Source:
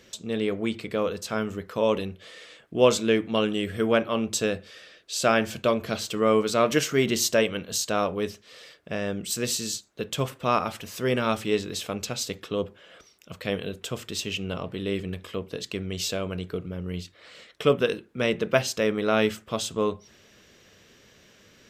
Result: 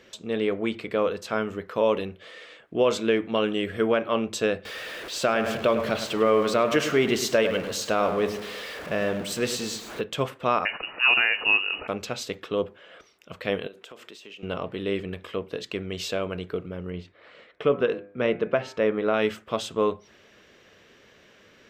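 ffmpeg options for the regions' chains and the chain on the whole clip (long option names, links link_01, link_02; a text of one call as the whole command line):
ffmpeg -i in.wav -filter_complex "[0:a]asettb=1/sr,asplit=3[link_01][link_02][link_03];[link_01]atrim=end=4.654[link_04];[link_02]atrim=start=4.65:end=10.01,asetpts=PTS-STARTPTS,afade=type=in:duration=0.004:curve=qsin,afade=type=out:start_time=5.356:duration=0.004:curve=qsin,aeval=exprs='val(0)+0.5*0.0211*sgn(val(0))':channel_layout=same,asplit=2[link_05][link_06];[link_06]adelay=102,lowpass=frequency=2200:poles=1,volume=-9.5dB,asplit=2[link_07][link_08];[link_08]adelay=102,lowpass=frequency=2200:poles=1,volume=0.46,asplit=2[link_09][link_10];[link_10]adelay=102,lowpass=frequency=2200:poles=1,volume=0.46,asplit=2[link_11][link_12];[link_12]adelay=102,lowpass=frequency=2200:poles=1,volume=0.46,asplit=2[link_13][link_14];[link_14]adelay=102,lowpass=frequency=2200:poles=1,volume=0.46[link_15];[link_05][link_07][link_09][link_11][link_13][link_15]amix=inputs=6:normalize=0,atrim=end_sample=236376[link_16];[link_03]atrim=start=10.006[link_17];[link_04][link_16]acrossfade=duration=0.004:curve1=hsin:curve2=qsin[link_18];[link_18][link_17]acrossfade=duration=0.004:curve1=qsin:curve2=hsin,asettb=1/sr,asplit=3[link_19][link_20][link_21];[link_19]atrim=end=10.654[link_22];[link_20]atrim=start=10.65:end=11.88,asetpts=PTS-STARTPTS,afade=type=in:duration=0.004:curve=qsin,afade=type=out:start_time=1.226:duration=0.004:curve=qsin,acontrast=45,lowpass=frequency=2600:width_type=q:width=0.5098,lowpass=frequency=2600:width_type=q:width=0.6013,lowpass=frequency=2600:width_type=q:width=0.9,lowpass=frequency=2600:width_type=q:width=2.563,afreqshift=-3000[link_23];[link_21]atrim=start=11.876[link_24];[link_22][link_23]acrossfade=duration=0.004:curve1=hsin:curve2=qsin[link_25];[link_25][link_24]acrossfade=duration=0.004:curve1=qsin:curve2=hsin,asettb=1/sr,asplit=3[link_26][link_27][link_28];[link_26]atrim=end=13.674[link_29];[link_27]atrim=start=13.67:end=14.43,asetpts=PTS-STARTPTS,afade=type=in:duration=0.004:curve=qsin,afade=type=out:start_time=0.756:duration=0.004:curve=qsin,highpass=270,acompressor=threshold=-41dB:ratio=8:attack=3.2:release=140:knee=1:detection=peak[link_30];[link_28]atrim=start=14.426[link_31];[link_29][link_30]acrossfade=duration=0.004:curve1=hsin:curve2=qsin[link_32];[link_32][link_31]acrossfade=duration=0.004:curve1=qsin:curve2=hsin,asettb=1/sr,asplit=3[link_33][link_34][link_35];[link_33]atrim=end=16.904[link_36];[link_34]atrim=start=16.9:end=19.14,asetpts=PTS-STARTPTS,afade=type=in:duration=0.004:curve=qsin,afade=type=out:start_time=2.236:duration=0.004:curve=qsin,lowpass=frequency=1700:poles=1,bandreject=frequency=100.5:width_type=h:width=4,bandreject=frequency=201:width_type=h:width=4,bandreject=frequency=301.5:width_type=h:width=4,bandreject=frequency=402:width_type=h:width=4,bandreject=frequency=502.5:width_type=h:width=4,bandreject=frequency=603:width_type=h:width=4,bandreject=frequency=703.5:width_type=h:width=4,bandreject=frequency=804:width_type=h:width=4,bandreject=frequency=904.5:width_type=h:width=4,bandreject=frequency=1005:width_type=h:width=4,bandreject=frequency=1105.5:width_type=h:width=4,bandreject=frequency=1206:width_type=h:width=4,bandreject=frequency=1306.5:width_type=h:width=4,bandreject=frequency=1407:width_type=h:width=4,bandreject=frequency=1507.5:width_type=h:width=4,bandreject=frequency=1608:width_type=h:width=4,bandreject=frequency=1708.5:width_type=h:width=4,bandreject=frequency=1809:width_type=h:width=4,bandreject=frequency=1909.5:width_type=h:width=4,bandreject=frequency=2010:width_type=h:width=4,bandreject=frequency=2110.5:width_type=h:width=4,bandreject=frequency=2211:width_type=h:width=4,bandreject=frequency=2311.5:width_type=h:width=4,bandreject=frequency=2412:width_type=h:width=4,bandreject=frequency=2512.5:width_type=h:width=4[link_37];[link_35]atrim=start=19.136[link_38];[link_36][link_37]acrossfade=duration=0.004:curve1=hsin:curve2=qsin[link_39];[link_39][link_38]acrossfade=duration=0.004:curve1=qsin:curve2=hsin,bass=frequency=250:gain=-7,treble=frequency=4000:gain=-11,alimiter=limit=-13.5dB:level=0:latency=1:release=112,volume=3dB" out.wav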